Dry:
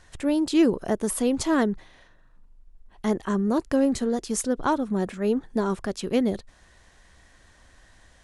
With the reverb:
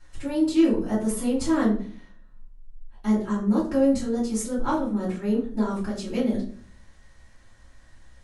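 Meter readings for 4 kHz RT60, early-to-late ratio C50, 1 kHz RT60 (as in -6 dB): 0.30 s, 7.0 dB, 0.40 s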